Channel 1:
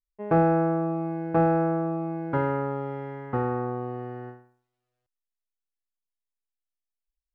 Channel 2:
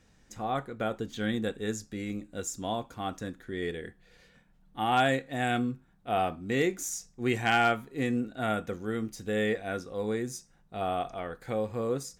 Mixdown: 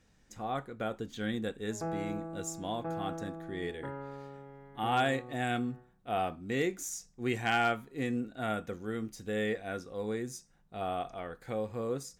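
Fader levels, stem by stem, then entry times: -16.0 dB, -4.0 dB; 1.50 s, 0.00 s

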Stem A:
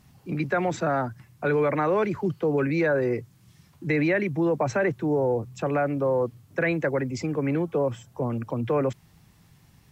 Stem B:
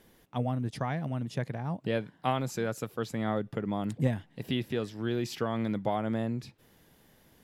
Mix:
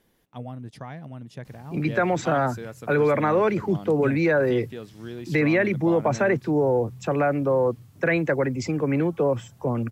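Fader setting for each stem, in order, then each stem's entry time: +2.5 dB, -5.5 dB; 1.45 s, 0.00 s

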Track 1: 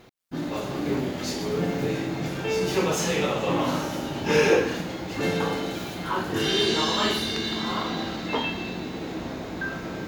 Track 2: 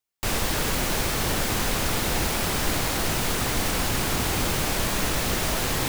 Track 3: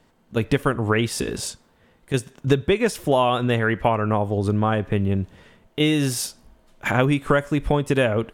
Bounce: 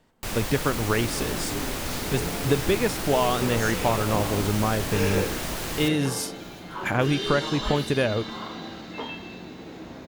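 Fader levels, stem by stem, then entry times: -7.5 dB, -6.0 dB, -4.0 dB; 0.65 s, 0.00 s, 0.00 s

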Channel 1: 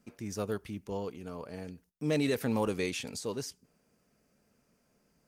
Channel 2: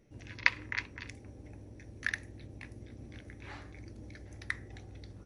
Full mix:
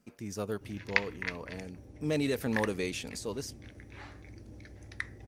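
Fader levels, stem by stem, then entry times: -1.0 dB, -1.0 dB; 0.00 s, 0.50 s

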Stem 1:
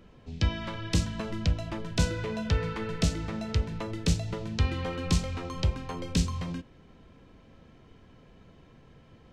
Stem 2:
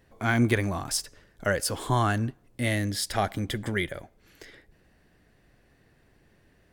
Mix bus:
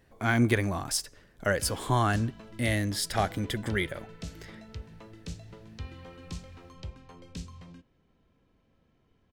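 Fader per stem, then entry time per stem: -14.0 dB, -1.0 dB; 1.20 s, 0.00 s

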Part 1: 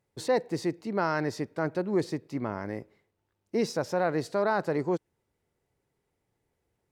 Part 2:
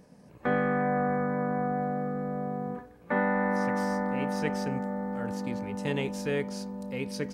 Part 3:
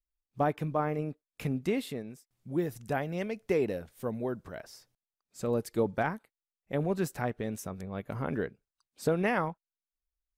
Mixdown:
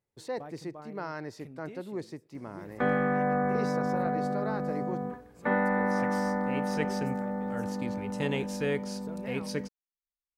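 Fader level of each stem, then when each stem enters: -9.5 dB, 0.0 dB, -17.0 dB; 0.00 s, 2.35 s, 0.00 s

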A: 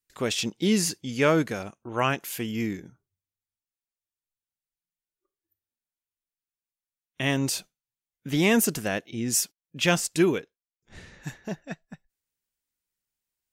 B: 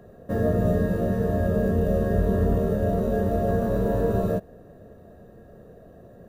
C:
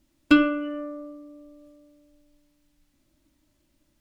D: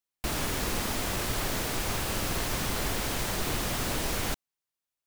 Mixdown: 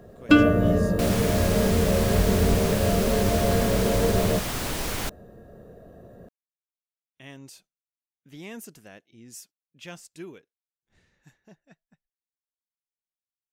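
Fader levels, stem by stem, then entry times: -19.0 dB, +0.5 dB, +1.0 dB, +1.0 dB; 0.00 s, 0.00 s, 0.00 s, 0.75 s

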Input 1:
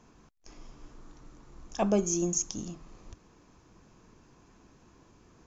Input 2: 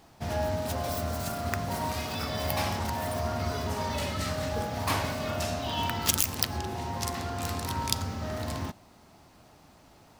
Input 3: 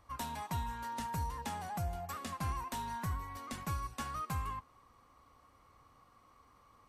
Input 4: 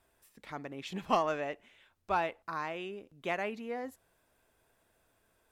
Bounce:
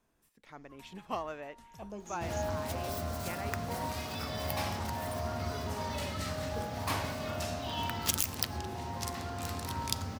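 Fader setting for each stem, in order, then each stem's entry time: -18.5 dB, -5.0 dB, -17.5 dB, -8.0 dB; 0.00 s, 2.00 s, 0.60 s, 0.00 s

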